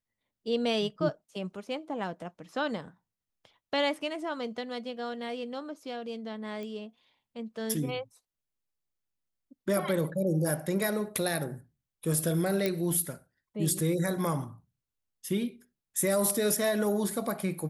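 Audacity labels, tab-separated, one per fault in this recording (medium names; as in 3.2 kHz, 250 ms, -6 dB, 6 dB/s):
6.630000	6.630000	pop -28 dBFS
12.660000	12.660000	pop -14 dBFS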